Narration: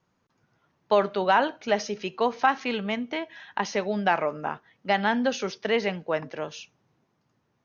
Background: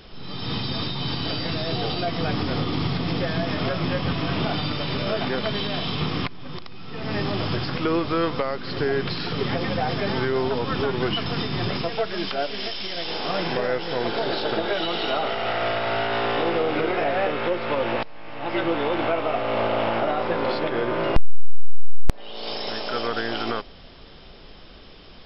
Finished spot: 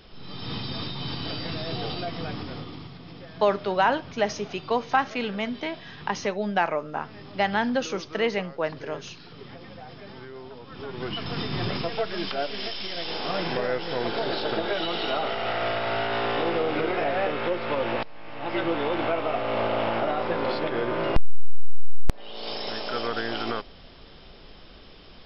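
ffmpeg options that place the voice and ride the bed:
-filter_complex "[0:a]adelay=2500,volume=-0.5dB[a];[1:a]volume=10.5dB,afade=t=out:st=1.92:d=0.98:silence=0.223872,afade=t=in:st=10.71:d=0.82:silence=0.16788[b];[a][b]amix=inputs=2:normalize=0"

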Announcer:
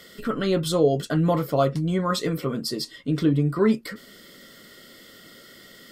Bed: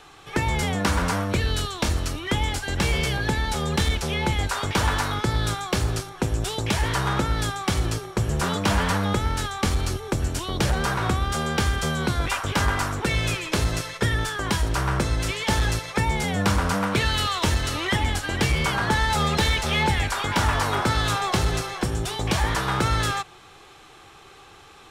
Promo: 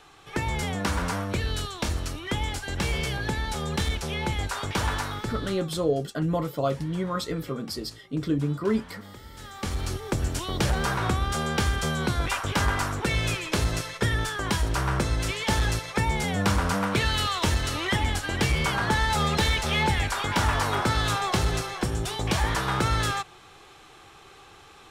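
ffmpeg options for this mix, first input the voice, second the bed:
-filter_complex "[0:a]adelay=5050,volume=-5dB[a];[1:a]volume=15.5dB,afade=t=out:st=4.93:d=0.85:silence=0.133352,afade=t=in:st=9.33:d=0.74:silence=0.1[b];[a][b]amix=inputs=2:normalize=0"

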